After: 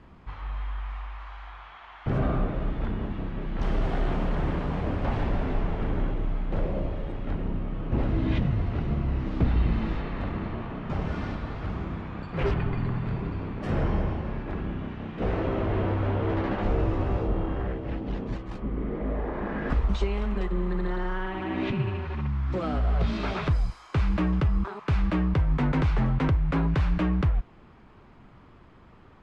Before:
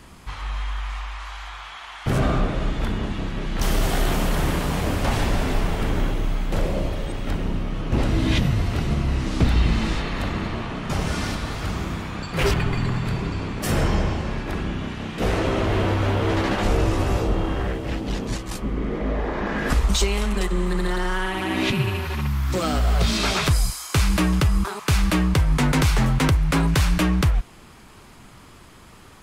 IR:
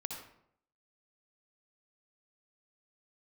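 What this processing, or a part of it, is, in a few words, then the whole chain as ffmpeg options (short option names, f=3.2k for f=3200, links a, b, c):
phone in a pocket: -af "lowpass=3.3k,highshelf=f=2k:g=-10.5,volume=-4.5dB"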